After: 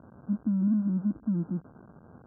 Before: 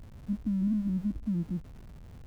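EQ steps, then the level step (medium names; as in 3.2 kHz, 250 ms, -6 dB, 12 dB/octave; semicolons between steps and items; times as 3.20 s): high-pass 200 Hz 12 dB/octave; Chebyshev low-pass 1.6 kHz, order 10; +6.0 dB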